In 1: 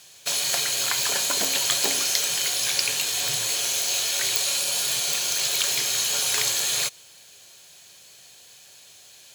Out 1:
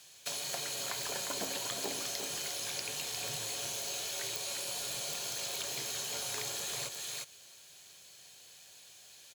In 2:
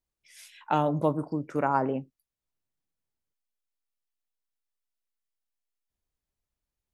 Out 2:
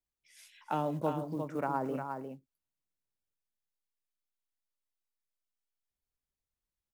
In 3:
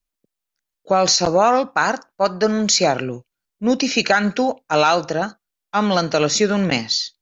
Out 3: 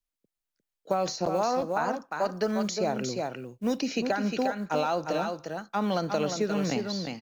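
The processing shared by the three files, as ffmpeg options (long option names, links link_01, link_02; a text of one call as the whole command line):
ffmpeg -i in.wav -filter_complex "[0:a]acrusher=bits=8:mode=log:mix=0:aa=0.000001,aecho=1:1:354:0.447,acrossover=split=110|970[link_01][link_02][link_03];[link_01]acompressor=threshold=-48dB:ratio=4[link_04];[link_02]acompressor=threshold=-17dB:ratio=4[link_05];[link_03]acompressor=threshold=-30dB:ratio=4[link_06];[link_04][link_05][link_06]amix=inputs=3:normalize=0,volume=-7dB" out.wav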